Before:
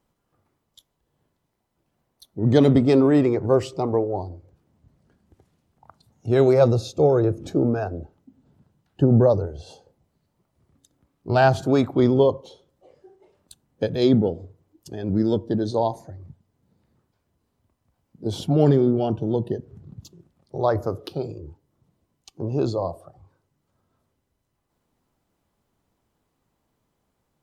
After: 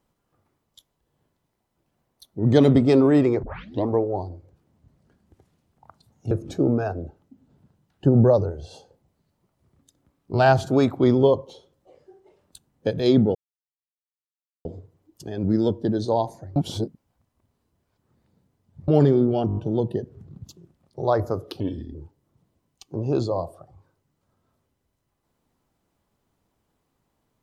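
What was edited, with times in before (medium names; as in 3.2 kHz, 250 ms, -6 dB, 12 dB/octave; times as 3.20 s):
3.43 s: tape start 0.46 s
6.31–7.27 s: delete
14.31 s: insert silence 1.30 s
16.22–18.54 s: reverse
19.13 s: stutter 0.02 s, 6 plays
21.16–21.41 s: speed 72%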